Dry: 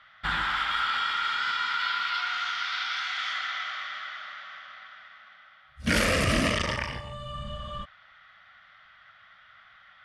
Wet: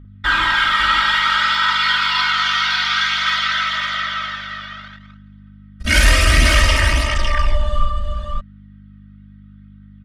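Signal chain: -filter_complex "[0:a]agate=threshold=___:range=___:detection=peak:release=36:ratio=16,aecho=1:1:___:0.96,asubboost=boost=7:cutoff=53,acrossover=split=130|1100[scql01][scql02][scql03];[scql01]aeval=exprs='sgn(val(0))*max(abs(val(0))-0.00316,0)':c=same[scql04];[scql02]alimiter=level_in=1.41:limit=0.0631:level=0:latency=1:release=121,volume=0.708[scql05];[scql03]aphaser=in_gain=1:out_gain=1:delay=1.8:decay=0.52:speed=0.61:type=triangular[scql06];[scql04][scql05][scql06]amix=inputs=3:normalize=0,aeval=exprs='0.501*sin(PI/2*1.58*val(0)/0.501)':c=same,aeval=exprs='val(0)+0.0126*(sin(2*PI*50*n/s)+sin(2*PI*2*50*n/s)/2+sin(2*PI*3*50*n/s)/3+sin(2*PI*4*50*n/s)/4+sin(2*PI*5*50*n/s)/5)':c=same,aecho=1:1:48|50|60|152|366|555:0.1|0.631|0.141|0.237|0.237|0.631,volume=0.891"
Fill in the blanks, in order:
0.00631, 0.0398, 3.2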